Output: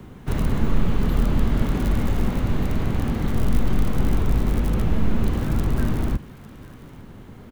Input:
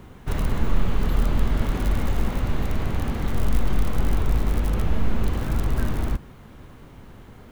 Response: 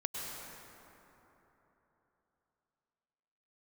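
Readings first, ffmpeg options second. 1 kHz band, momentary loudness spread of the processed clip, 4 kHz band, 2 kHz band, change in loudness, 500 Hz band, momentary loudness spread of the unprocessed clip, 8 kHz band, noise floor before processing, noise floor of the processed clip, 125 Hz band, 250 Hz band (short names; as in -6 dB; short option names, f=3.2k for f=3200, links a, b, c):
0.0 dB, 20 LU, 0.0 dB, 0.0 dB, +2.0 dB, +2.0 dB, 8 LU, n/a, -45 dBFS, -43 dBFS, +2.5 dB, +5.0 dB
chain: -filter_complex "[0:a]acrossover=split=110|350|870[a][b][c][d];[b]acontrast=55[e];[d]aecho=1:1:852:0.141[f];[a][e][c][f]amix=inputs=4:normalize=0"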